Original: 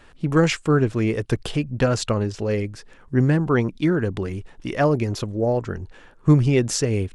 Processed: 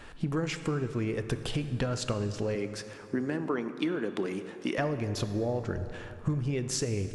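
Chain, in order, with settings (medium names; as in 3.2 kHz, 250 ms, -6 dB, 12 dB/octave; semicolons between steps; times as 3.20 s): 2.55–4.78 s: high-pass 210 Hz 24 dB/octave; compression 12:1, threshold -30 dBFS, peak gain reduction 20.5 dB; plate-style reverb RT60 3.1 s, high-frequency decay 0.55×, DRR 9 dB; trim +2.5 dB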